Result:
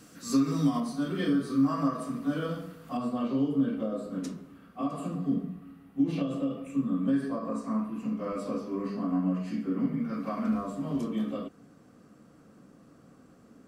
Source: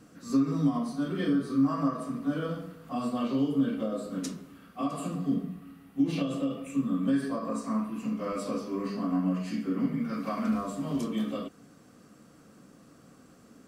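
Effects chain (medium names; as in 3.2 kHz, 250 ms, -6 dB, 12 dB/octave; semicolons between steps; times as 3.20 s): treble shelf 2.1 kHz +9.5 dB, from 0.80 s +3 dB, from 2.97 s -8 dB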